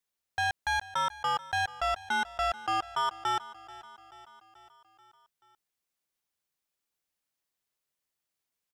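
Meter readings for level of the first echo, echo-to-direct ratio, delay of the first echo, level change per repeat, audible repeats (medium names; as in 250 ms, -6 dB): -18.0 dB, -16.0 dB, 434 ms, -4.5 dB, 4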